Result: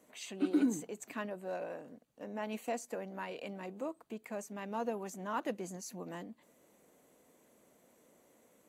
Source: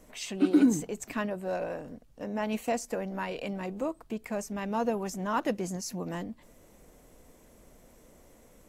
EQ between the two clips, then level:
high-pass filter 200 Hz 12 dB per octave
notch filter 5,300 Hz, Q 7.2
−7.0 dB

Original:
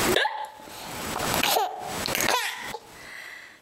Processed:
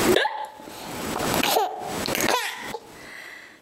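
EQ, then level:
parametric band 310 Hz +6.5 dB 1.8 octaves
0.0 dB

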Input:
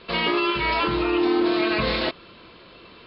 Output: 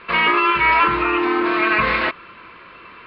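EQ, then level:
bass and treble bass −1 dB, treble −12 dB
flat-topped bell 1,600 Hz +11 dB
0.0 dB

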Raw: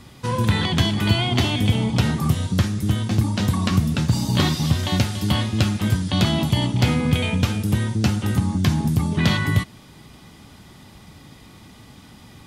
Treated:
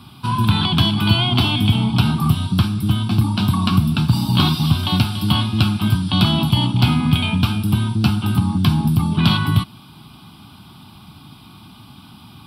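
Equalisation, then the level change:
high-pass filter 100 Hz
phaser with its sweep stopped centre 1,900 Hz, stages 6
+6.0 dB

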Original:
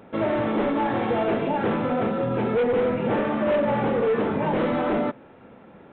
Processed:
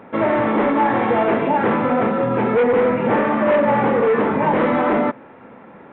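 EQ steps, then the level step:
octave-band graphic EQ 125/250/500/1,000/2,000 Hz +4/+7/+5/+10/+10 dB
−3.0 dB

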